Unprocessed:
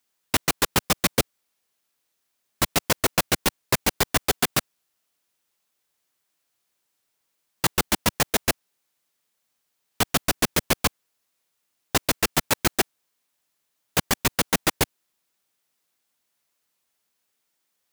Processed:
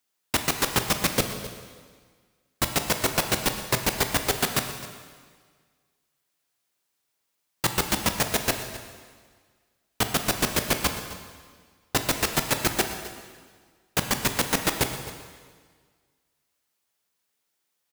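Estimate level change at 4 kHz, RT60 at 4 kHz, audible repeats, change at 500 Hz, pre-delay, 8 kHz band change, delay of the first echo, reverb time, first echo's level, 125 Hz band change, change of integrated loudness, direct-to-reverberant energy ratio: -1.5 dB, 1.5 s, 1, -1.5 dB, 7 ms, -1.5 dB, 0.261 s, 1.6 s, -16.5 dB, -1.0 dB, -2.0 dB, 5.5 dB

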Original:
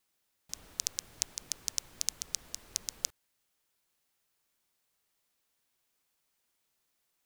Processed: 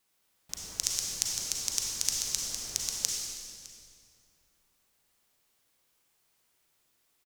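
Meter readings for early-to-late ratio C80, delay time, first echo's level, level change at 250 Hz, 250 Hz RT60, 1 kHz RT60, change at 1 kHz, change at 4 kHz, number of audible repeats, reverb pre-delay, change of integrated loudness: 1.0 dB, 0.609 s, -20.0 dB, +7.0 dB, 2.7 s, 2.1 s, +6.5 dB, +6.0 dB, 1, 34 ms, +5.5 dB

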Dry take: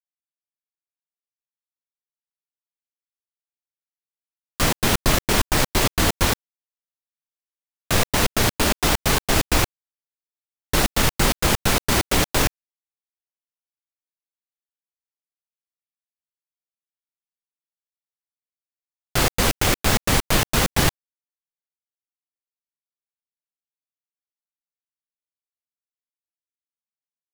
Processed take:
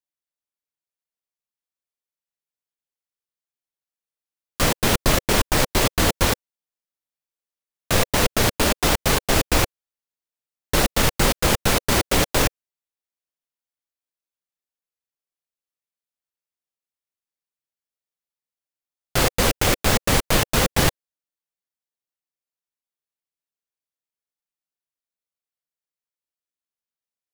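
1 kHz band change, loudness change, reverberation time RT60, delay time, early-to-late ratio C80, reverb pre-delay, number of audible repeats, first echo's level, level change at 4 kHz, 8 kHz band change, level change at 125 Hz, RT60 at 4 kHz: +0.5 dB, +0.5 dB, none, none, none, none, none, none, 0.0 dB, 0.0 dB, 0.0 dB, none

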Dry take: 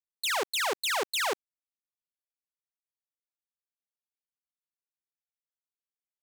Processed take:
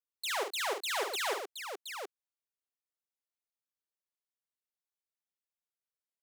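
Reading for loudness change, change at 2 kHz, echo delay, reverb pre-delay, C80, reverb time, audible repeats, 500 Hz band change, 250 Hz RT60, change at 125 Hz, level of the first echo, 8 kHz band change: -6.0 dB, -5.0 dB, 48 ms, none, none, none, 2, -2.5 dB, none, n/a, -5.5 dB, -5.0 dB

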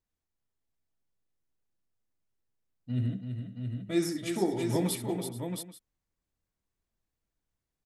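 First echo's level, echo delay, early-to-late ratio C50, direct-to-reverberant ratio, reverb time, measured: -12.5 dB, 68 ms, none, none, none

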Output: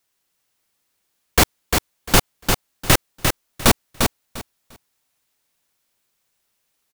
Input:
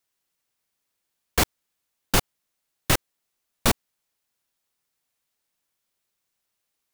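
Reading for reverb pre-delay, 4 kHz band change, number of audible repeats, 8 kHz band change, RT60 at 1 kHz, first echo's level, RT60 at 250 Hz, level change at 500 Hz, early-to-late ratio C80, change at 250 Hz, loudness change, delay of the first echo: none, +7.5 dB, 3, +7.5 dB, none, -5.0 dB, none, +7.5 dB, none, +7.5 dB, +5.5 dB, 0.349 s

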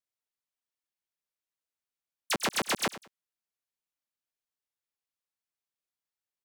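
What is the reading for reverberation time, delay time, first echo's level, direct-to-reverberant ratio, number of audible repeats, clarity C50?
none, 99 ms, -15.5 dB, none, 2, none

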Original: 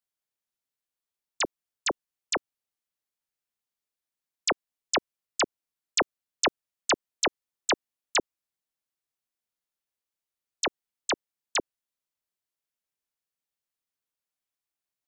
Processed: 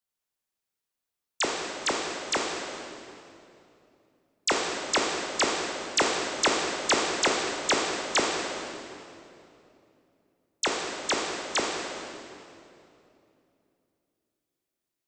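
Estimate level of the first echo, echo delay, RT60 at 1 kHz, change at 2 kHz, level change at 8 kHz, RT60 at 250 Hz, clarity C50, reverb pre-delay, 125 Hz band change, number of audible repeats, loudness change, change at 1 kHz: none, none, 2.6 s, +3.5 dB, +3.0 dB, 3.5 s, 1.0 dB, 15 ms, +4.5 dB, none, +2.5 dB, +4.0 dB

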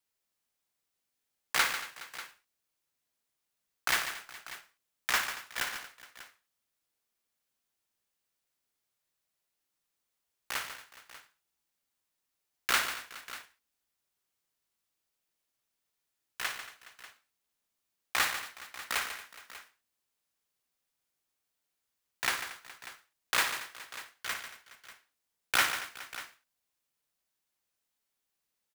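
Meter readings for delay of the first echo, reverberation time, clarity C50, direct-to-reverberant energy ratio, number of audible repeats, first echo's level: 58 ms, none, none, none, 5, -10.5 dB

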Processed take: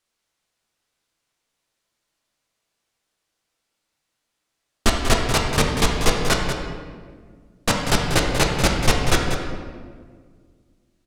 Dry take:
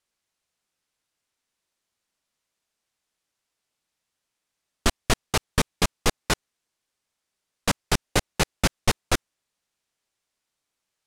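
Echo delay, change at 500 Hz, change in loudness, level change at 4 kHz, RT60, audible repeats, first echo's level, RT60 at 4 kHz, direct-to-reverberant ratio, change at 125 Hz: 0.19 s, +6.5 dB, +5.0 dB, +5.0 dB, 1.7 s, 1, -8.5 dB, 1.0 s, -0.5 dB, +6.5 dB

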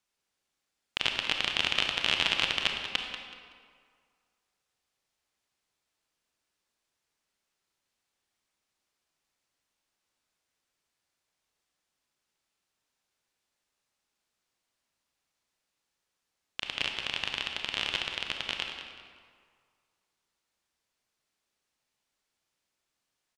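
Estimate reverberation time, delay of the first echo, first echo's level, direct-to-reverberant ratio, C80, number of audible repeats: 2.0 s, 0.188 s, -10.5 dB, 2.5 dB, 4.5 dB, 2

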